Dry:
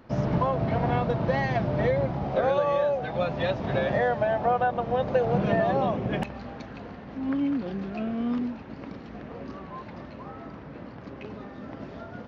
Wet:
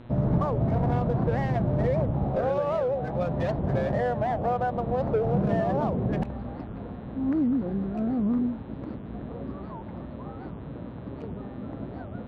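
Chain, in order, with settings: local Wiener filter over 15 samples; in parallel at +2.5 dB: peak limiter -23 dBFS, peak gain reduction 10 dB; on the sum: tilt EQ -2 dB/octave; mains buzz 120 Hz, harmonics 34, -43 dBFS -6 dB/octave; warped record 78 rpm, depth 250 cents; trim -8 dB

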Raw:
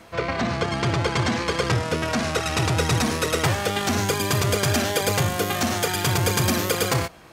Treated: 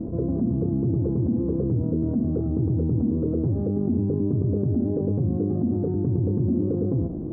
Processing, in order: four-pole ladder low-pass 350 Hz, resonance 45%; level flattener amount 70%; trim +4.5 dB

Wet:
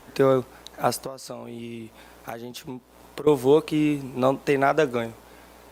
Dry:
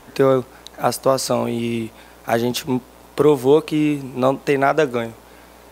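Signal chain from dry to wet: 1.03–3.27 s: compression 12:1, threshold -28 dBFS, peak gain reduction 18 dB; trim -4 dB; Opus 64 kbps 48 kHz

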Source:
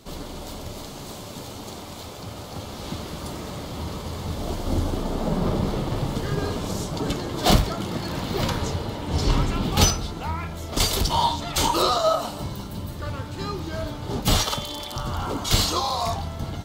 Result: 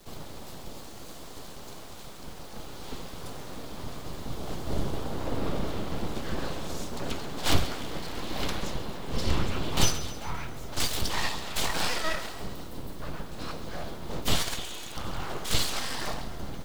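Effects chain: octave divider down 1 oct, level +4 dB; dynamic bell 2.7 kHz, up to +5 dB, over -40 dBFS, Q 0.95; full-wave rectifier; bit crusher 8-bit; on a send: thinning echo 134 ms, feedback 57%, level -14 dB; on the sum: trim -7 dB

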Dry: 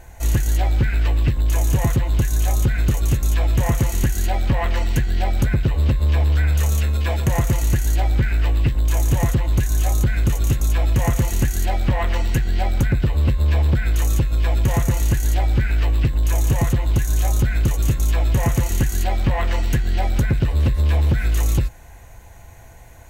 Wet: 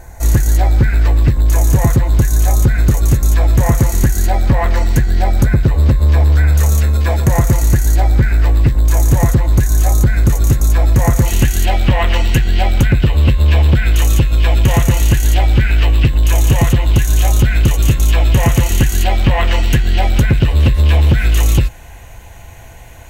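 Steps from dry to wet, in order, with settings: peaking EQ 2.9 kHz -9.5 dB 0.59 oct, from 11.26 s +6.5 dB; trim +7 dB

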